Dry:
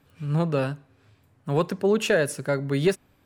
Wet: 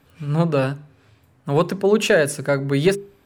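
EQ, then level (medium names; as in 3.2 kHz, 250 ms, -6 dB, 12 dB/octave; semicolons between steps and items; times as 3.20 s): hum notches 50/100/150/200/250/300/350/400 Hz; +5.5 dB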